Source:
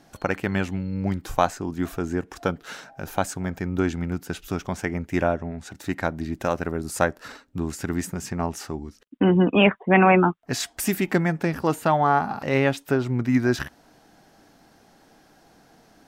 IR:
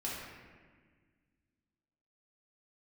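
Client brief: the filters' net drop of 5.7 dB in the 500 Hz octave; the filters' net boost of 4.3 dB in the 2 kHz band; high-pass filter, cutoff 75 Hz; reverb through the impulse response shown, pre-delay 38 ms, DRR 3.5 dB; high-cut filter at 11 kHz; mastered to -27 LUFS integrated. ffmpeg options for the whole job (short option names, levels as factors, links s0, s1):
-filter_complex "[0:a]highpass=75,lowpass=11000,equalizer=f=500:t=o:g=-8.5,equalizer=f=2000:t=o:g=6,asplit=2[s0][s1];[1:a]atrim=start_sample=2205,adelay=38[s2];[s1][s2]afir=irnorm=-1:irlink=0,volume=0.473[s3];[s0][s3]amix=inputs=2:normalize=0,volume=0.668"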